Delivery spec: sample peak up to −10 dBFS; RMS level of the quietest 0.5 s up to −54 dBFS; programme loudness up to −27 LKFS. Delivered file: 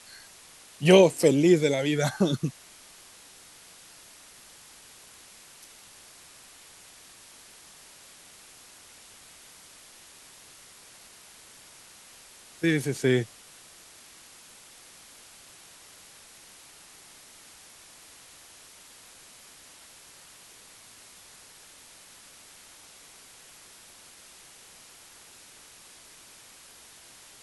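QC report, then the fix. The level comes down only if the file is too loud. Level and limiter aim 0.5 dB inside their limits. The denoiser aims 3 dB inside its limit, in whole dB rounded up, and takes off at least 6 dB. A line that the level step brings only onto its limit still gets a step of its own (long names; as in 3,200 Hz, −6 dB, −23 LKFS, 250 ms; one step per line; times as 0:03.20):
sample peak −5.5 dBFS: out of spec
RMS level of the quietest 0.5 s −52 dBFS: out of spec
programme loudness −23.0 LKFS: out of spec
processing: level −4.5 dB
brickwall limiter −10.5 dBFS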